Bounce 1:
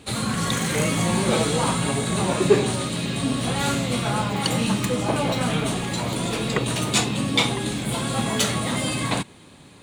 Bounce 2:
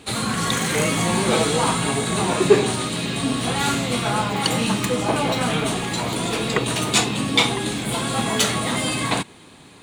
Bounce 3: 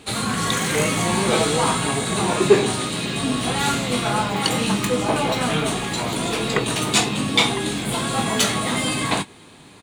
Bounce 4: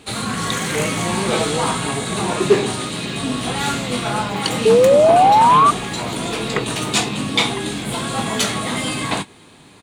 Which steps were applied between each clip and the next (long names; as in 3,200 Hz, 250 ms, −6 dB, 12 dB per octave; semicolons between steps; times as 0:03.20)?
bass and treble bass −5 dB, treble −1 dB; notch filter 560 Hz, Q 12; level +3.5 dB
double-tracking delay 20 ms −10.5 dB
sound drawn into the spectrogram rise, 0:04.65–0:05.71, 430–1,200 Hz −11 dBFS; highs frequency-modulated by the lows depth 0.12 ms